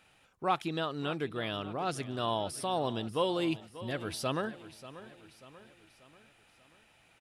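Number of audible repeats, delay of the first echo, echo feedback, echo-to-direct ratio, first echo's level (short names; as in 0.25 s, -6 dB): 4, 0.588 s, 49%, -14.5 dB, -15.5 dB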